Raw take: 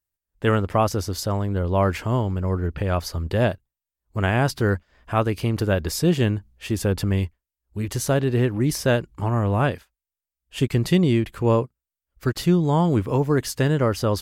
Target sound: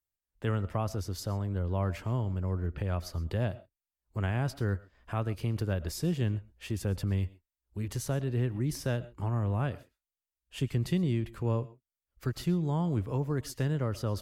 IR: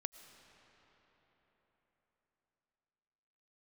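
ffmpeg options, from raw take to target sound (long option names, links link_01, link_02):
-filter_complex "[0:a]acrossover=split=170[link_01][link_02];[link_02]acompressor=threshold=-39dB:ratio=1.5[link_03];[link_01][link_03]amix=inputs=2:normalize=0[link_04];[1:a]atrim=start_sample=2205,atrim=end_sample=6174[link_05];[link_04][link_05]afir=irnorm=-1:irlink=0,volume=-3.5dB"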